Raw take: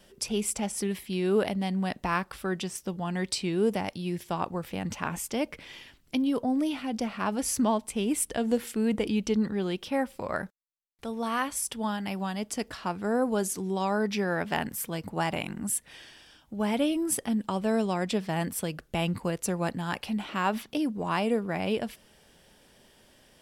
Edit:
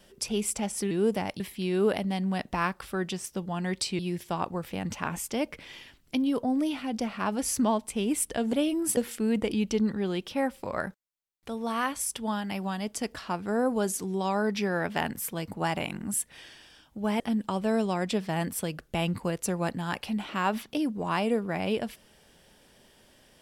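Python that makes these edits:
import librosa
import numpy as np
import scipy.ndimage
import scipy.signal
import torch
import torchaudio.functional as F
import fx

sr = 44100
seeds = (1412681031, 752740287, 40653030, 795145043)

y = fx.edit(x, sr, fx.move(start_s=3.5, length_s=0.49, to_s=0.91),
    fx.move(start_s=16.76, length_s=0.44, to_s=8.53), tone=tone)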